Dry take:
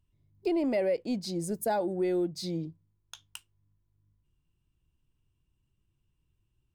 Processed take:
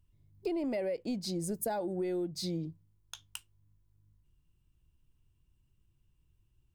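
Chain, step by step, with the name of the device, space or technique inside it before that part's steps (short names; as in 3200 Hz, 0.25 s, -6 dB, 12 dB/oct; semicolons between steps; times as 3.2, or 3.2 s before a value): ASMR close-microphone chain (low shelf 100 Hz +6.5 dB; compressor 4:1, threshold -32 dBFS, peak gain reduction 7 dB; high shelf 8200 Hz +3.5 dB)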